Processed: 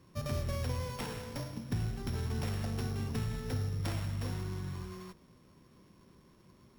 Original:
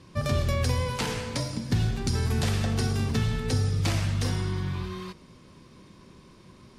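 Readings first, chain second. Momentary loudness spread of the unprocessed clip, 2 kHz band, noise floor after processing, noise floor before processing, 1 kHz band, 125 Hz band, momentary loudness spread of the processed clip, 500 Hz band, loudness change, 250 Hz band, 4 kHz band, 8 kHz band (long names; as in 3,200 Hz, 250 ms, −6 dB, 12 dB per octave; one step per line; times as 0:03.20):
5 LU, −11.5 dB, −62 dBFS, −53 dBFS, −9.5 dB, −9.0 dB, 6 LU, −9.0 dB, −9.5 dB, −9.0 dB, −12.5 dB, −12.0 dB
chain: samples sorted by size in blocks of 8 samples
windowed peak hold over 5 samples
level −9 dB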